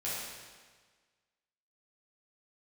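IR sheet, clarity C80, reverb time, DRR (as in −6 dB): 0.5 dB, 1.5 s, −9.5 dB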